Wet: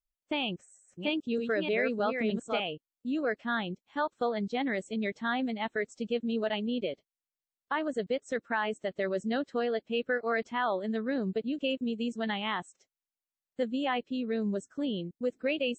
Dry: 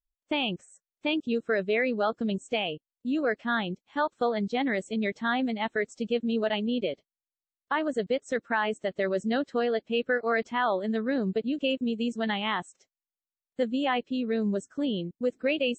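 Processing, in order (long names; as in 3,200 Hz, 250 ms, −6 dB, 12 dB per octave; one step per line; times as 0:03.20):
0:00.46–0:02.60: delay that plays each chunk backwards 307 ms, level −4.5 dB
level −3.5 dB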